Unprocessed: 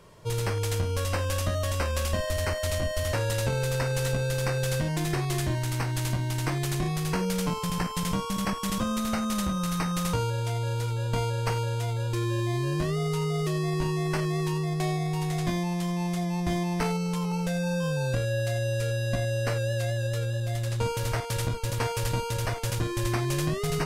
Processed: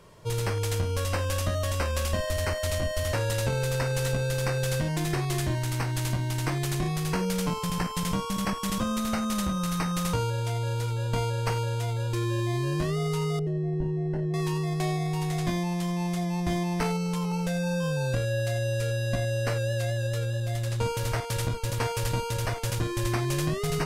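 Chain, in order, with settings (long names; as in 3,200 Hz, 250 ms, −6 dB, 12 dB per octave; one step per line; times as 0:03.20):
0:13.39–0:14.34: moving average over 37 samples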